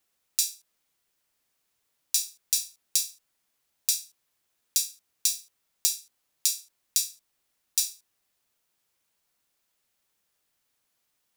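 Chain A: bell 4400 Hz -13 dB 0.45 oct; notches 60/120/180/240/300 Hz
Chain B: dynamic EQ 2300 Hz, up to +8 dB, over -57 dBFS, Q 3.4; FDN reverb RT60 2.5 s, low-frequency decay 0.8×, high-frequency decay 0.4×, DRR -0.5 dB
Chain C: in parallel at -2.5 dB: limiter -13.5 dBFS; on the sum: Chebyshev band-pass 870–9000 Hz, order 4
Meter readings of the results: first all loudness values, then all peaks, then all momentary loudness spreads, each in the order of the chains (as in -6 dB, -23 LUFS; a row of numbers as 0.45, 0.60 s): -29.5, -26.5, -27.0 LUFS; -2.5, -2.5, -5.0 dBFS; 7, 12, 7 LU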